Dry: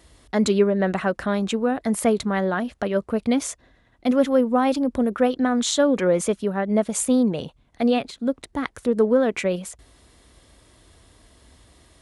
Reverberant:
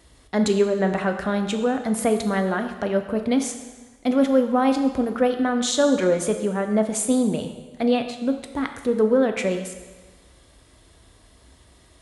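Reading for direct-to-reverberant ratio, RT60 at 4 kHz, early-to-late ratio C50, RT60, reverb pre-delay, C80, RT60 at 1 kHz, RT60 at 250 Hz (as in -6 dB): 6.0 dB, 1.2 s, 8.5 dB, 1.3 s, 8 ms, 10.0 dB, 1.3 s, 1.3 s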